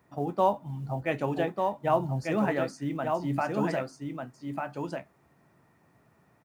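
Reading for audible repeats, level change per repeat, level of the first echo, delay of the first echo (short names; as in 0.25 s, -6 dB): 1, no steady repeat, -4.5 dB, 1.195 s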